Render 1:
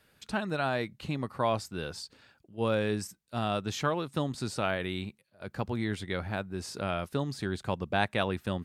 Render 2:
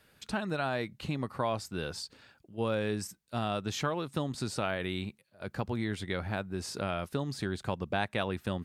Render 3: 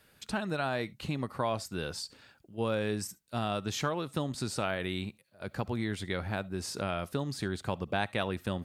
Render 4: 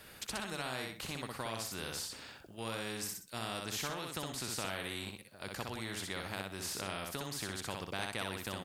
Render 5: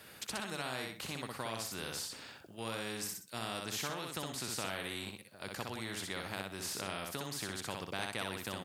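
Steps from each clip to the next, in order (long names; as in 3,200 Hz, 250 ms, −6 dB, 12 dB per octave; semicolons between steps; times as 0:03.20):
downward compressor 2 to 1, threshold −32 dBFS, peak gain reduction 6 dB; level +1.5 dB
high-shelf EQ 7,300 Hz +4 dB; convolution reverb, pre-delay 40 ms, DRR 22.5 dB
on a send: repeating echo 62 ms, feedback 16%, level −5 dB; on the sum: every bin compressed towards the loudest bin 2 to 1; level −6 dB
high-pass filter 87 Hz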